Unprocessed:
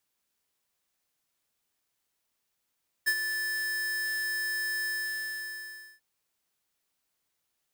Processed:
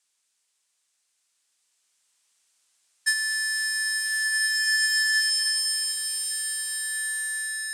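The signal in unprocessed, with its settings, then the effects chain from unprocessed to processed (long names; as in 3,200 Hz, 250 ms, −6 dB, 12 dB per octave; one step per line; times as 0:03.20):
note with an ADSR envelope square 1,750 Hz, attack 20 ms, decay 61 ms, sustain −8 dB, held 1.79 s, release 1,150 ms −23.5 dBFS
elliptic band-pass filter 150–8,700 Hz, stop band 80 dB
spectral tilt +4 dB per octave
slow-attack reverb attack 2,270 ms, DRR −4 dB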